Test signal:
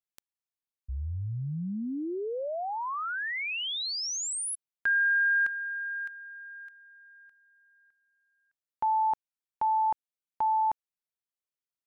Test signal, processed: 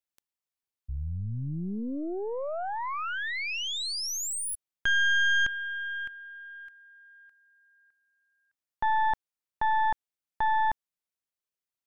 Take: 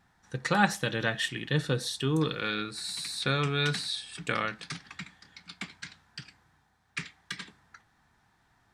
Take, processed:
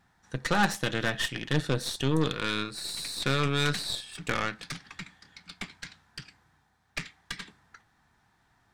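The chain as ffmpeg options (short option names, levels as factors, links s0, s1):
-af "asoftclip=type=tanh:threshold=0.266,aeval=exprs='0.251*(cos(1*acos(clip(val(0)/0.251,-1,1)))-cos(1*PI/2))+0.0282*(cos(8*acos(clip(val(0)/0.251,-1,1)))-cos(8*PI/2))':c=same"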